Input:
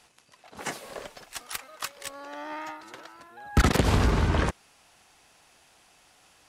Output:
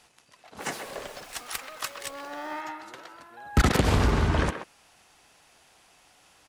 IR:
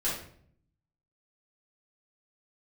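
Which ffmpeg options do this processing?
-filter_complex "[0:a]asettb=1/sr,asplit=3[link_01][link_02][link_03];[link_01]atrim=end=0.604[link_04];[link_02]atrim=start=0.6:end=2.61,asetpts=PTS-STARTPTS,afade=type=in:duration=0.004:curve=qsin,afade=type=out:start_time=2.006:duration=0.004:curve=qsin,aeval=exprs='val(0)+0.5*0.00562*sgn(val(0))':channel_layout=same[link_05];[link_03]atrim=start=2.606[link_06];[link_04][link_05]acrossfade=duration=0.004:curve1=hsin:curve2=qsin[link_07];[link_07][link_06]acrossfade=duration=0.004:curve1=qsin:curve2=hsin,asplit=2[link_08][link_09];[link_09]adelay=130,highpass=300,lowpass=3400,asoftclip=type=hard:threshold=-17.5dB,volume=-8dB[link_10];[link_08][link_10]amix=inputs=2:normalize=0"

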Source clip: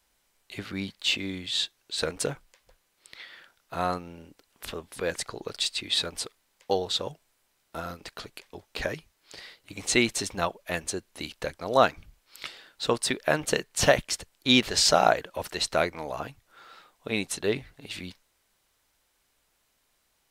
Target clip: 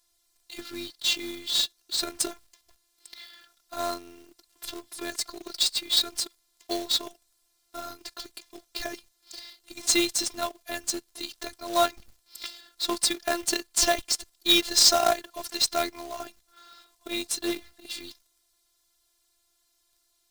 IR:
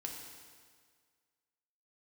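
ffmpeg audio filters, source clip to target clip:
-af "highshelf=frequency=3300:width_type=q:width=1.5:gain=6.5,afftfilt=real='hypot(re,im)*cos(PI*b)':imag='0':win_size=512:overlap=0.75,acrusher=bits=2:mode=log:mix=0:aa=0.000001"

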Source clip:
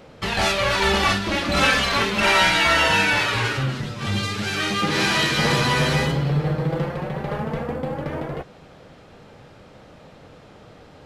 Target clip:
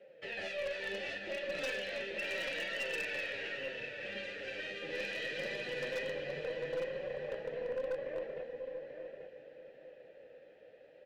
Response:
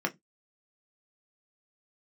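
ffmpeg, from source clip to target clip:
-filter_complex "[0:a]flanger=delay=5:depth=7.5:regen=16:speed=0.72:shape=sinusoidal,acrossover=split=360|3000[link_01][link_02][link_03];[link_02]acompressor=threshold=-31dB:ratio=3[link_04];[link_01][link_04][link_03]amix=inputs=3:normalize=0,asplit=3[link_05][link_06][link_07];[link_05]bandpass=frequency=530:width_type=q:width=8,volume=0dB[link_08];[link_06]bandpass=frequency=1840:width_type=q:width=8,volume=-6dB[link_09];[link_07]bandpass=frequency=2480:width_type=q:width=8,volume=-9dB[link_10];[link_08][link_09][link_10]amix=inputs=3:normalize=0,asplit=2[link_11][link_12];[link_12]adelay=840,lowpass=frequency=4400:poles=1,volume=-6.5dB,asplit=2[link_13][link_14];[link_14]adelay=840,lowpass=frequency=4400:poles=1,volume=0.26,asplit=2[link_15][link_16];[link_16]adelay=840,lowpass=frequency=4400:poles=1,volume=0.26[link_17];[link_13][link_15][link_17]amix=inputs=3:normalize=0[link_18];[link_11][link_18]amix=inputs=2:normalize=0,asubboost=boost=4.5:cutoff=52,asplit=2[link_19][link_20];[link_20]aecho=0:1:646|1292|1938|2584|3230|3876:0.2|0.112|0.0626|0.035|0.0196|0.011[link_21];[link_19][link_21]amix=inputs=2:normalize=0,aeval=exprs='0.0299*(abs(mod(val(0)/0.0299+3,4)-2)-1)':channel_layout=same,aeval=exprs='0.0316*(cos(1*acos(clip(val(0)/0.0316,-1,1)))-cos(1*PI/2))+0.00282*(cos(2*acos(clip(val(0)/0.0316,-1,1)))-cos(2*PI/2))':channel_layout=same"

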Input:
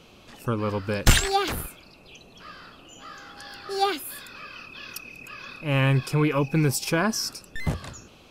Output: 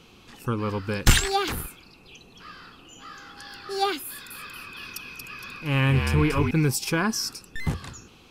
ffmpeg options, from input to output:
ffmpeg -i in.wav -filter_complex "[0:a]equalizer=frequency=610:width_type=o:width=0.25:gain=-14,asettb=1/sr,asplit=3[link_01][link_02][link_03];[link_01]atrim=end=4.074[link_04];[link_02]atrim=start=4.07:end=6.51,asetpts=PTS-STARTPTS,afade=type=in:duration=0.004:curve=qsin,afade=type=out:start_time=2.436:duration=0.004:curve=qsin,asplit=6[link_05][link_06][link_07][link_08][link_09][link_10];[link_06]adelay=232,afreqshift=-54,volume=-4.5dB[link_11];[link_07]adelay=464,afreqshift=-108,volume=-11.8dB[link_12];[link_08]adelay=696,afreqshift=-162,volume=-19.2dB[link_13];[link_09]adelay=928,afreqshift=-216,volume=-26.5dB[link_14];[link_10]adelay=1160,afreqshift=-270,volume=-33.8dB[link_15];[link_05][link_11][link_12][link_13][link_14][link_15]amix=inputs=6:normalize=0,atrim=end_sample=107604[link_16];[link_03]atrim=start=6.506[link_17];[link_04][link_16]acrossfade=duration=0.004:curve1=hsin:curve2=qsin[link_18];[link_18][link_17]acrossfade=duration=0.004:curve1=qsin:curve2=hsin" out.wav

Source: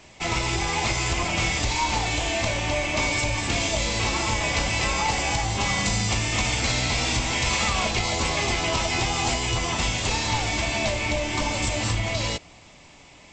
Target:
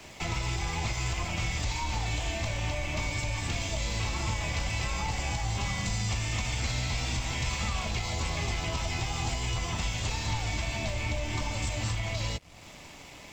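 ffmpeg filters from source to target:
ffmpeg -i in.wav -filter_complex "[0:a]acrossover=split=170[link_01][link_02];[link_02]acompressor=threshold=-44dB:ratio=2.5[link_03];[link_01][link_03]amix=inputs=2:normalize=0,acrossover=split=480|1000[link_04][link_05][link_06];[link_04]alimiter=level_in=5.5dB:limit=-24dB:level=0:latency=1:release=237,volume=-5.5dB[link_07];[link_07][link_05][link_06]amix=inputs=3:normalize=0,aeval=exprs='sgn(val(0))*max(abs(val(0))-0.00112,0)':channel_layout=same,volume=4.5dB" out.wav

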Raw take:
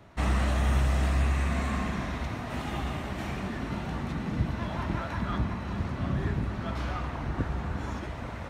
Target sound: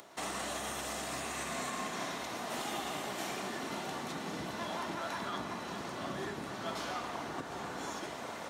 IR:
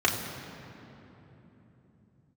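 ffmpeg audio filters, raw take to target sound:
-filter_complex "[0:a]acompressor=mode=upward:threshold=-47dB:ratio=2.5,bass=frequency=250:gain=-10,treble=frequency=4000:gain=11,asplit=2[link_01][link_02];[1:a]atrim=start_sample=2205[link_03];[link_02][link_03]afir=irnorm=-1:irlink=0,volume=-23.5dB[link_04];[link_01][link_04]amix=inputs=2:normalize=0,alimiter=level_in=0.5dB:limit=-24dB:level=0:latency=1:release=139,volume=-0.5dB,highpass=190,volume=-2dB"

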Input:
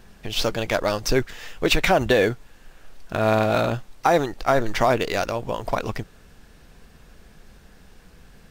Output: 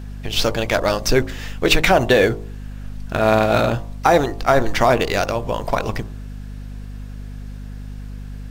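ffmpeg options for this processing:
ffmpeg -i in.wav -af "bandreject=frequency=53.37:width_type=h:width=4,bandreject=frequency=106.74:width_type=h:width=4,bandreject=frequency=160.11:width_type=h:width=4,bandreject=frequency=213.48:width_type=h:width=4,bandreject=frequency=266.85:width_type=h:width=4,bandreject=frequency=320.22:width_type=h:width=4,bandreject=frequency=373.59:width_type=h:width=4,bandreject=frequency=426.96:width_type=h:width=4,bandreject=frequency=480.33:width_type=h:width=4,bandreject=frequency=533.7:width_type=h:width=4,bandreject=frequency=587.07:width_type=h:width=4,bandreject=frequency=640.44:width_type=h:width=4,bandreject=frequency=693.81:width_type=h:width=4,bandreject=frequency=747.18:width_type=h:width=4,bandreject=frequency=800.55:width_type=h:width=4,bandreject=frequency=853.92:width_type=h:width=4,bandreject=frequency=907.29:width_type=h:width=4,bandreject=frequency=960.66:width_type=h:width=4,bandreject=frequency=1014.03:width_type=h:width=4,bandreject=frequency=1067.4:width_type=h:width=4,bandreject=frequency=1120.77:width_type=h:width=4,bandreject=frequency=1174.14:width_type=h:width=4,aeval=exprs='val(0)+0.0178*(sin(2*PI*50*n/s)+sin(2*PI*2*50*n/s)/2+sin(2*PI*3*50*n/s)/3+sin(2*PI*4*50*n/s)/4+sin(2*PI*5*50*n/s)/5)':channel_layout=same,volume=4.5dB" out.wav

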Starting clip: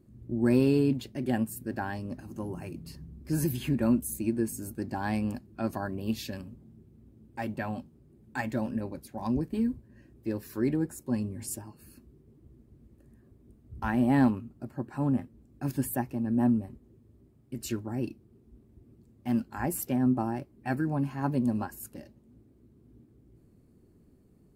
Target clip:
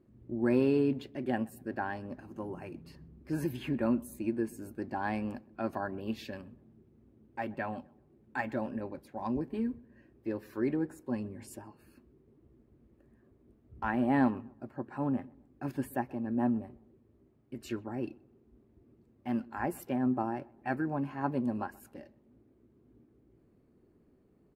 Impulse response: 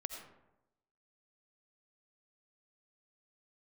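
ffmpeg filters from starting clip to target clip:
-filter_complex "[0:a]bass=frequency=250:gain=-9,treble=frequency=4000:gain=-15,asplit=2[link_01][link_02];[link_02]adelay=127,lowpass=frequency=1700:poles=1,volume=-23dB,asplit=2[link_03][link_04];[link_04]adelay=127,lowpass=frequency=1700:poles=1,volume=0.38,asplit=2[link_05][link_06];[link_06]adelay=127,lowpass=frequency=1700:poles=1,volume=0.38[link_07];[link_01][link_03][link_05][link_07]amix=inputs=4:normalize=0"

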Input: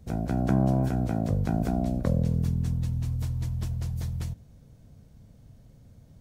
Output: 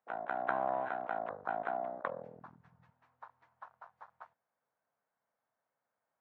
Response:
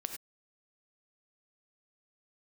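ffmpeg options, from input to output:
-af "asuperpass=centerf=1200:order=4:qfactor=1.2,afwtdn=0.00282,volume=6dB"

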